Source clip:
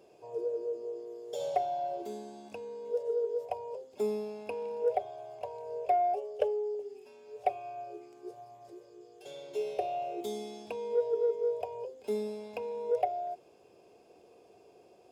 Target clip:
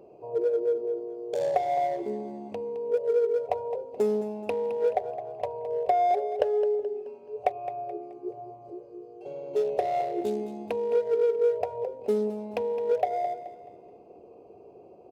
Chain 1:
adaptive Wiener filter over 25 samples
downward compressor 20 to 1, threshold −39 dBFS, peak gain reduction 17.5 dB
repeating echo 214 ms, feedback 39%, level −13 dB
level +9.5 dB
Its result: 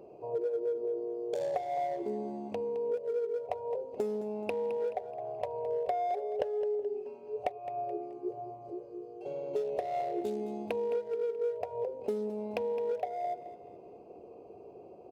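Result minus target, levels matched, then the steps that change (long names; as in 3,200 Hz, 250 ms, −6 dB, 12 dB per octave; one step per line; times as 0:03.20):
downward compressor: peak gain reduction +9 dB
change: downward compressor 20 to 1, threshold −29.5 dBFS, peak gain reduction 8.5 dB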